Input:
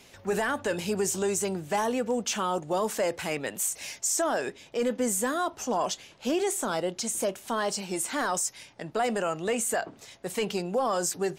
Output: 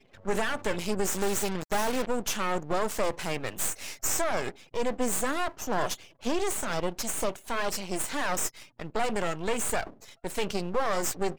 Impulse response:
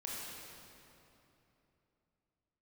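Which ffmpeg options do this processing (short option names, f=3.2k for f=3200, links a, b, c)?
-filter_complex "[0:a]asettb=1/sr,asplit=3[a][b][c];[a]atrim=end=1.124[d];[b]atrim=start=1.12:end=2.07,asetpts=PTS-STARTPTS,afade=t=in:d=0.004:c=qsin,afade=t=out:st=0.946:d=0.004:c=qsin,acrusher=bits=3:dc=4:mix=0:aa=0.000001[e];[c]atrim=start=2.066[f];[d][e]acrossfade=d=0.004:c1=hsin:c2=qsin[g];[g][f]acrossfade=d=0.004:c1=qsin:c2=hsin,afftfilt=real='re*gte(hypot(re,im),0.00447)':imag='im*gte(hypot(re,im),0.00447)':win_size=1024:overlap=0.75,aeval=exprs='max(val(0),0)':c=same,volume=3.5dB"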